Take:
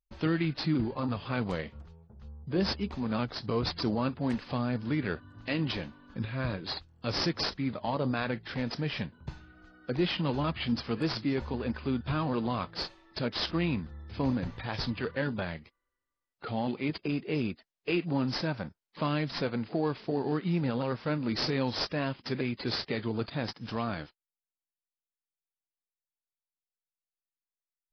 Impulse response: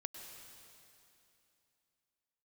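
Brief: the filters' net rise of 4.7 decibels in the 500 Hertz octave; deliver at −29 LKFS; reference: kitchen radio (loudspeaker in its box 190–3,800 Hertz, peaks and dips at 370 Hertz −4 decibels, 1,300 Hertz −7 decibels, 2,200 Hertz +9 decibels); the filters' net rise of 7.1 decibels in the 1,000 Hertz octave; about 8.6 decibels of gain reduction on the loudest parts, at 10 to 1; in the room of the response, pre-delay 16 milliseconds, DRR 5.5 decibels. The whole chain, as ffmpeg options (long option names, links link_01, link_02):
-filter_complex "[0:a]equalizer=frequency=500:width_type=o:gain=5,equalizer=frequency=1000:width_type=o:gain=9,acompressor=threshold=-29dB:ratio=10,asplit=2[link_01][link_02];[1:a]atrim=start_sample=2205,adelay=16[link_03];[link_02][link_03]afir=irnorm=-1:irlink=0,volume=-3dB[link_04];[link_01][link_04]amix=inputs=2:normalize=0,highpass=190,equalizer=frequency=370:width_type=q:width=4:gain=-4,equalizer=frequency=1300:width_type=q:width=4:gain=-7,equalizer=frequency=2200:width_type=q:width=4:gain=9,lowpass=frequency=3800:width=0.5412,lowpass=frequency=3800:width=1.3066,volume=6.5dB"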